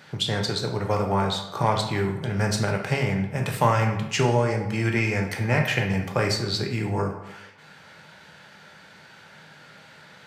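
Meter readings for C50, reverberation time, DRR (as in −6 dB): 6.5 dB, 0.90 s, 1.5 dB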